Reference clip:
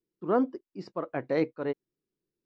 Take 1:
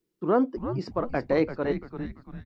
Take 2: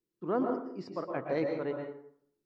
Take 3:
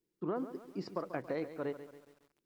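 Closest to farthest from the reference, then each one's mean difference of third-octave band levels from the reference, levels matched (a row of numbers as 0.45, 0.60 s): 1, 2, 3; 4.0, 5.5, 8.5 dB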